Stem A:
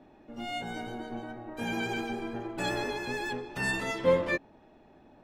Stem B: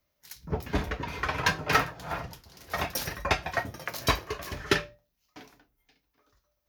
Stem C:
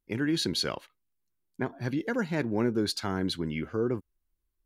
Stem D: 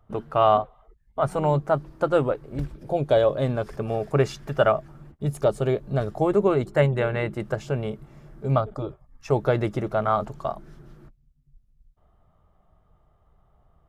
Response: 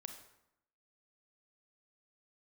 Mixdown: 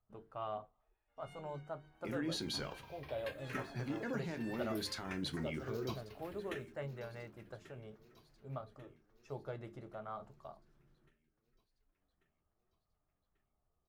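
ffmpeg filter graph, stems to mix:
-filter_complex "[0:a]highpass=1300,highshelf=frequency=4800:gain=-10.5,adelay=800,volume=-15dB[link_01];[1:a]acrusher=bits=7:mix=0:aa=0.000001,asplit=2[link_02][link_03];[link_03]afreqshift=-0.65[link_04];[link_02][link_04]amix=inputs=2:normalize=1,adelay=1800,volume=-15.5dB,asplit=2[link_05][link_06];[link_06]volume=-15dB[link_07];[2:a]acompressor=threshold=-31dB:ratio=6,alimiter=level_in=5dB:limit=-24dB:level=0:latency=1:release=13,volume=-5dB,adelay=1950,volume=2dB,asplit=2[link_08][link_09];[link_09]volume=-22dB[link_10];[3:a]volume=-18.5dB[link_11];[link_07][link_10]amix=inputs=2:normalize=0,aecho=0:1:1140|2280|3420|4560|5700|6840|7980|9120:1|0.53|0.281|0.149|0.0789|0.0418|0.0222|0.0117[link_12];[link_01][link_05][link_08][link_11][link_12]amix=inputs=5:normalize=0,bandreject=frequency=50:width_type=h:width=6,bandreject=frequency=100:width_type=h:width=6,bandreject=frequency=150:width_type=h:width=6,bandreject=frequency=200:width_type=h:width=6,bandreject=frequency=250:width_type=h:width=6,bandreject=frequency=300:width_type=h:width=6,bandreject=frequency=350:width_type=h:width=6,bandreject=frequency=400:width_type=h:width=6,bandreject=frequency=450:width_type=h:width=6,flanger=delay=9.6:depth=4.8:regen=-62:speed=0.15:shape=sinusoidal"

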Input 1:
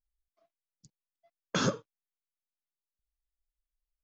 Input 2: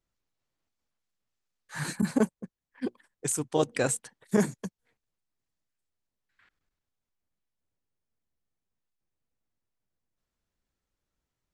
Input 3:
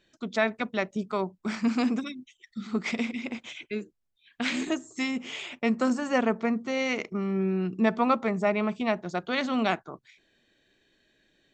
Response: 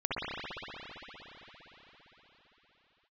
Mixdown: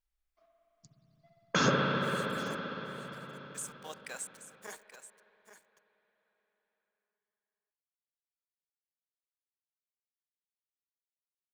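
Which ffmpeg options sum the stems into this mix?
-filter_complex "[0:a]equalizer=frequency=1600:width_type=o:width=2.1:gain=5.5,volume=-4.5dB,asplit=3[link_01][link_02][link_03];[link_02]volume=-4.5dB[link_04];[link_03]volume=-14dB[link_05];[1:a]highpass=990,acrusher=bits=6:mix=0:aa=0.5,adelay=300,volume=-11dB,asplit=3[link_06][link_07][link_08];[link_07]volume=-22.5dB[link_09];[link_08]volume=-11.5dB[link_10];[3:a]atrim=start_sample=2205[link_11];[link_04][link_09]amix=inputs=2:normalize=0[link_12];[link_12][link_11]afir=irnorm=-1:irlink=0[link_13];[link_05][link_10]amix=inputs=2:normalize=0,aecho=0:1:830:1[link_14];[link_01][link_06][link_13][link_14]amix=inputs=4:normalize=0"

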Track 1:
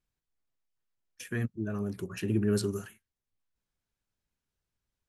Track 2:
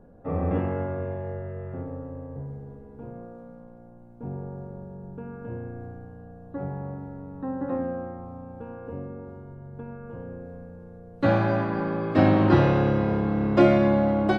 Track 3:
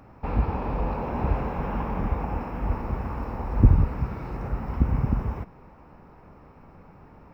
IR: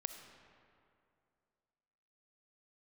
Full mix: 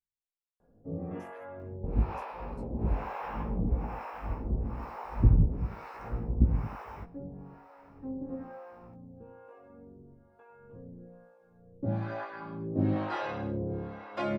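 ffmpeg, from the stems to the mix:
-filter_complex "[0:a]asoftclip=type=tanh:threshold=-27dB,volume=-15.5dB,asplit=2[link_01][link_02];[1:a]adelay=600,volume=-4dB[link_03];[2:a]adelay=1600,volume=1.5dB[link_04];[link_02]apad=whole_len=394072[link_05];[link_04][link_05]sidechaincompress=threshold=-49dB:ratio=8:attack=16:release=201[link_06];[link_01][link_03][link_06]amix=inputs=3:normalize=0,acrossover=split=550[link_07][link_08];[link_07]aeval=exprs='val(0)*(1-1/2+1/2*cos(2*PI*1.1*n/s))':channel_layout=same[link_09];[link_08]aeval=exprs='val(0)*(1-1/2-1/2*cos(2*PI*1.1*n/s))':channel_layout=same[link_10];[link_09][link_10]amix=inputs=2:normalize=0,flanger=delay=17:depth=2.2:speed=0.8"

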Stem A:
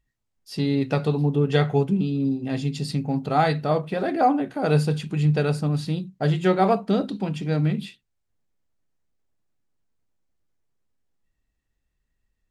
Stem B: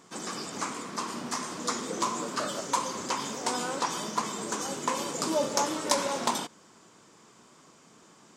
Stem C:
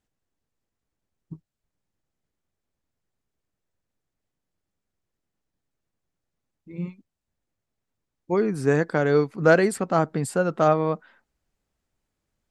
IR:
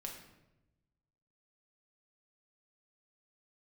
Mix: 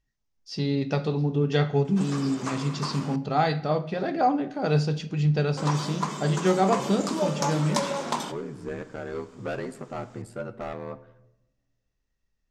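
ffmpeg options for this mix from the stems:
-filter_complex "[0:a]lowpass=frequency=5900:width_type=q:width=3.6,flanger=delay=7.7:depth=5.2:regen=-88:speed=0.2:shape=triangular,volume=-0.5dB,asplit=2[link_01][link_02];[link_02]volume=-7.5dB[link_03];[1:a]adelay=1850,volume=-1.5dB,asplit=3[link_04][link_05][link_06];[link_04]atrim=end=3.16,asetpts=PTS-STARTPTS,afade=type=out:start_time=3.156:duration=0.004:curve=hsin[link_07];[link_05]atrim=start=3.16:end=5.57,asetpts=PTS-STARTPTS,volume=0[link_08];[link_06]atrim=start=5.57,asetpts=PTS-STARTPTS,afade=type=in:duration=0.004:curve=hsin[link_09];[link_07][link_08][link_09]concat=n=3:v=0:a=1,asplit=2[link_10][link_11];[link_11]volume=-7.5dB[link_12];[2:a]aeval=exprs='val(0)*sin(2*PI*39*n/s)':channel_layout=same,volume=17.5dB,asoftclip=hard,volume=-17.5dB,flanger=delay=6.4:depth=2.3:regen=53:speed=0.34:shape=triangular,volume=-7dB,asplit=2[link_13][link_14];[link_14]volume=-5.5dB[link_15];[3:a]atrim=start_sample=2205[link_16];[link_03][link_12][link_15]amix=inputs=3:normalize=0[link_17];[link_17][link_16]afir=irnorm=-1:irlink=0[link_18];[link_01][link_10][link_13][link_18]amix=inputs=4:normalize=0,highshelf=frequency=5900:gain=-8.5"

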